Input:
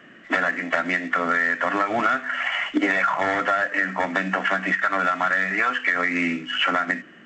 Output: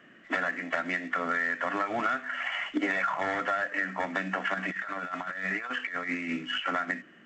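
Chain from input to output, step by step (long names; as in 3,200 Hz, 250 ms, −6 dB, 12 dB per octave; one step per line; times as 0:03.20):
0:04.54–0:06.66: compressor whose output falls as the input rises −25 dBFS, ratio −0.5
level −7.5 dB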